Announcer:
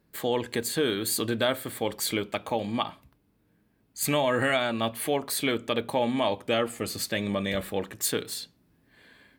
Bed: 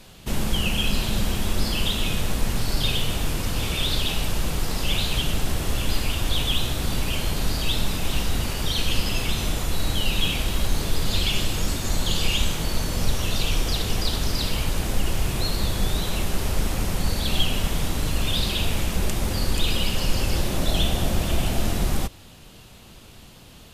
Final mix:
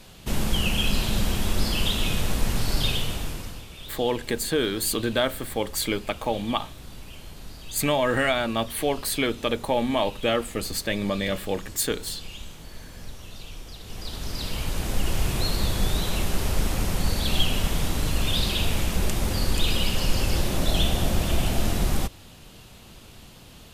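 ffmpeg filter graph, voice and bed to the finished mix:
-filter_complex "[0:a]adelay=3750,volume=1.26[s0];[1:a]volume=6.31,afade=t=out:st=2.79:d=0.86:silence=0.149624,afade=t=in:st=13.8:d=1.41:silence=0.149624[s1];[s0][s1]amix=inputs=2:normalize=0"

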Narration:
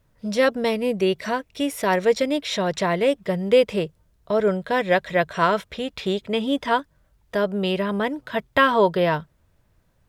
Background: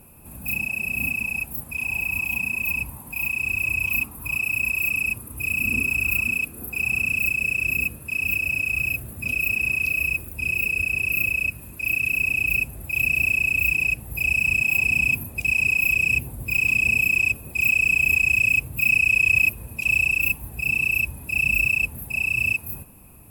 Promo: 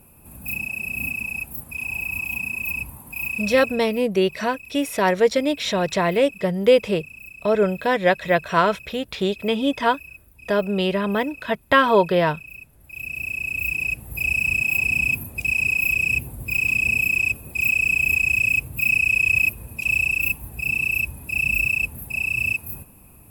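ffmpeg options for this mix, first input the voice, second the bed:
-filter_complex "[0:a]adelay=3150,volume=1.19[s0];[1:a]volume=6.31,afade=t=out:st=3.39:d=0.45:silence=0.149624,afade=t=in:st=12.74:d=1.48:silence=0.125893[s1];[s0][s1]amix=inputs=2:normalize=0"

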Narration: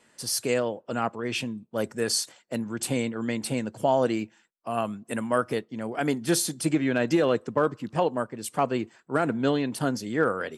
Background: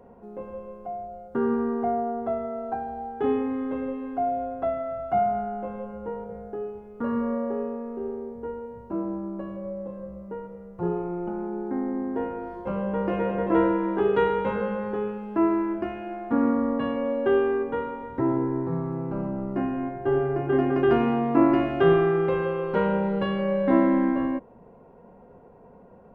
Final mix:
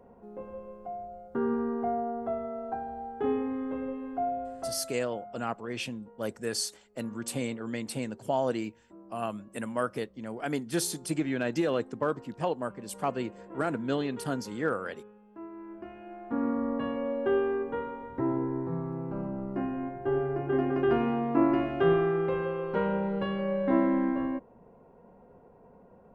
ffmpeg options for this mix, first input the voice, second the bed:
-filter_complex "[0:a]adelay=4450,volume=0.531[s0];[1:a]volume=4.22,afade=t=out:st=4.24:d=0.89:silence=0.133352,afade=t=in:st=15.52:d=1.23:silence=0.141254[s1];[s0][s1]amix=inputs=2:normalize=0"

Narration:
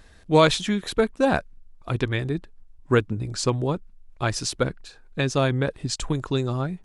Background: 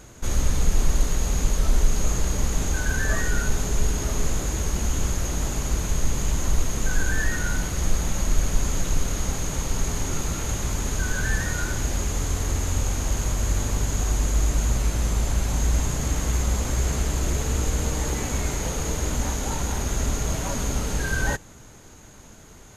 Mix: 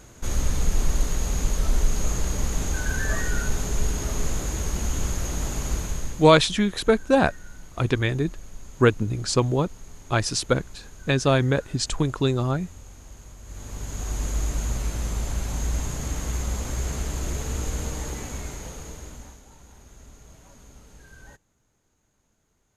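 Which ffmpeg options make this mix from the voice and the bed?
-filter_complex "[0:a]adelay=5900,volume=1.26[s0];[1:a]volume=4.73,afade=t=out:st=5.73:d=0.59:silence=0.125893,afade=t=in:st=13.44:d=0.82:silence=0.16788,afade=t=out:st=17.78:d=1.66:silence=0.112202[s1];[s0][s1]amix=inputs=2:normalize=0"

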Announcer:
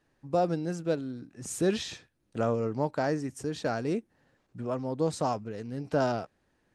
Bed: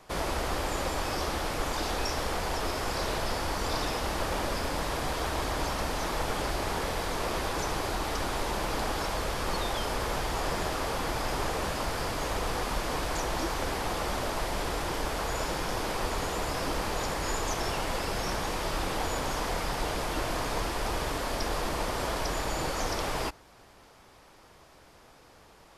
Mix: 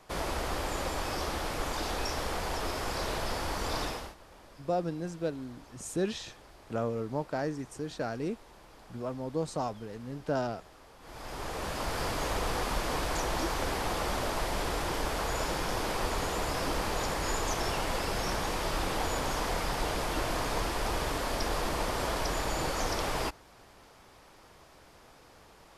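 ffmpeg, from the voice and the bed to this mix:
-filter_complex "[0:a]adelay=4350,volume=0.631[s0];[1:a]volume=10.6,afade=t=out:st=3.83:d=0.32:silence=0.0891251,afade=t=in:st=11:d=1.05:silence=0.0707946[s1];[s0][s1]amix=inputs=2:normalize=0"

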